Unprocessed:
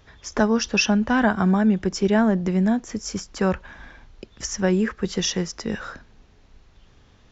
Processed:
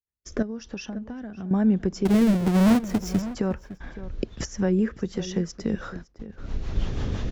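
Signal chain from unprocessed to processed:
0:02.05–0:03.22: each half-wave held at its own peak
camcorder AGC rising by 26 dB per second
noise gate −33 dBFS, range −46 dB
tilt shelving filter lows +4.5 dB, about 810 Hz
0:00.42–0:01.51: downward compressor 5 to 1, threshold −26 dBFS, peak gain reduction 13.5 dB
rotating-speaker cabinet horn 1 Hz, later 6 Hz, at 0:03.97
slap from a distant wall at 96 metres, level −14 dB
level −5.5 dB

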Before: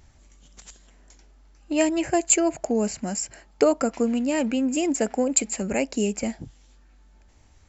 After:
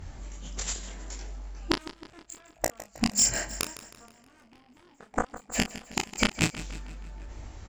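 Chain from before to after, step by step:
loose part that buzzes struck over −42 dBFS, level −17 dBFS
in parallel at 0 dB: brickwall limiter −15.5 dBFS, peak gain reduction 10.5 dB
on the sum: harmonic generator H 5 −35 dB, 6 −36 dB, 7 −10 dB, 8 −44 dB, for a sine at −2 dBFS
gate with flip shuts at −11 dBFS, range −41 dB
multi-voice chorus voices 2, 0.74 Hz, delay 22 ms, depth 3.5 ms
double-tracking delay 35 ms −11 dB
on a send: repeating echo 158 ms, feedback 59%, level −15 dB
on the sum: one half of a high-frequency compander decoder only
level +9 dB

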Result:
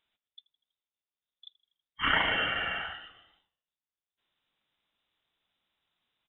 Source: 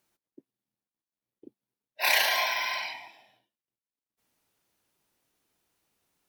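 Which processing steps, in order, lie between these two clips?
voice inversion scrambler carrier 3,800 Hz
echo with shifted repeats 81 ms, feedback 59%, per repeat −53 Hz, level −22 dB
level −1.5 dB

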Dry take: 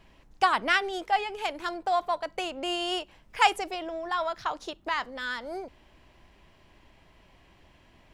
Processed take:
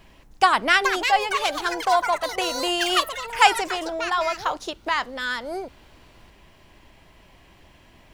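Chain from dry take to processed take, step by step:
high-shelf EQ 8,300 Hz +8.5 dB
delay with pitch and tempo change per echo 550 ms, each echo +6 semitones, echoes 3, each echo −6 dB
level +5.5 dB

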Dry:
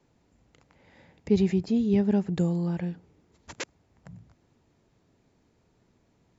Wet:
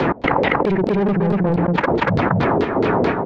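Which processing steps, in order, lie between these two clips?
spectral magnitudes quantised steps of 15 dB
high-shelf EQ 2,100 Hz −10.5 dB
phase-vocoder stretch with locked phases 0.51×
auto-filter low-pass saw down 4.6 Hz 410–4,400 Hz
mid-hump overdrive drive 27 dB, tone 1,600 Hz, clips at −13 dBFS
gate pattern "x.xx.xx.xxx.xxx" 125 BPM −24 dB
on a send: single-tap delay 238 ms −5.5 dB
on the sum: envelope flattener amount 100%

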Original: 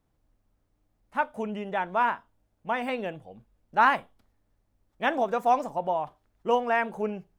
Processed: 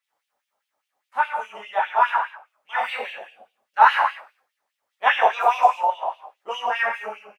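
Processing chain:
0:05.06–0:05.87: graphic EQ with 15 bands 160 Hz −11 dB, 400 Hz +7 dB, 1,000 Hz +7 dB, 2,500 Hz +8 dB
echo with shifted repeats 91 ms, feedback 33%, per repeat −110 Hz, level −18 dB
reverb whose tail is shaped and stops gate 270 ms falling, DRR −6 dB
auto-filter high-pass sine 4.9 Hz 730–3,000 Hz
level −3.5 dB

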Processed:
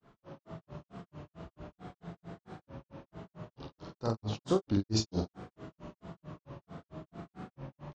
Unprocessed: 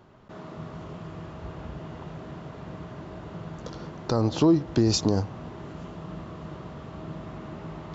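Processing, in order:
flutter between parallel walls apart 7.6 metres, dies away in 0.6 s
granular cloud 174 ms, grains 4.5 per second, pitch spread up and down by 3 semitones
level −7 dB

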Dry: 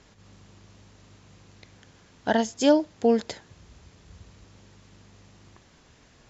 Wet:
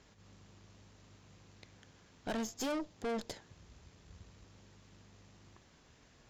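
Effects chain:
dynamic equaliser 1,600 Hz, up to −4 dB, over −45 dBFS, Q 1.5
tube saturation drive 30 dB, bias 0.65
level −3.5 dB

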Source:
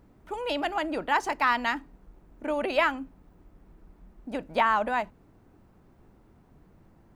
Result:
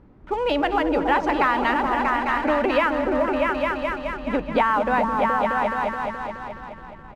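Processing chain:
low-pass filter 4,500 Hz 12 dB per octave
notch filter 670 Hz, Q 12
on a send: echo whose low-pass opens from repeat to repeat 212 ms, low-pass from 200 Hz, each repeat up 2 octaves, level 0 dB
on the sum: downward compressor 3 to 1, threshold −27 dBFS, peak gain reduction 7 dB
high-shelf EQ 3,300 Hz −9.5 dB
single-tap delay 217 ms −15 dB
in parallel at −4.5 dB: dead-zone distortion −47.5 dBFS
on the sum: level +6.5 dB

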